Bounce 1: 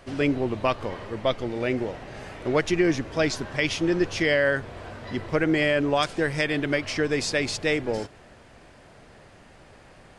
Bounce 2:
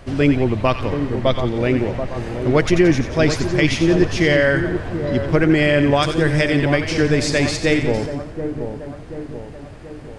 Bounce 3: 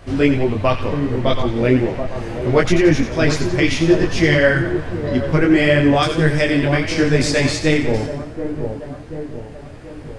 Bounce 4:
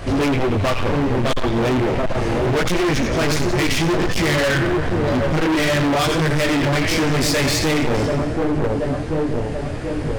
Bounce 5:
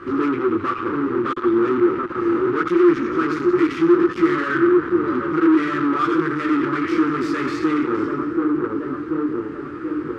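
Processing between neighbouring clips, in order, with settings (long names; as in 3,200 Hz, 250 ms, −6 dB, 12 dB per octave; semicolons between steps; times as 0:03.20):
low-shelf EQ 210 Hz +10.5 dB; echo with a time of its own for lows and highs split 1,200 Hz, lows 732 ms, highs 88 ms, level −8 dB; level +4.5 dB
micro pitch shift up and down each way 24 cents; level +4.5 dB
in parallel at +2 dB: downward compressor, threshold −24 dBFS, peak gain reduction 15 dB; on the sum: gain into a clipping stage and back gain 20 dB; level +3.5 dB
pair of resonant band-passes 660 Hz, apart 1.9 octaves; level +8.5 dB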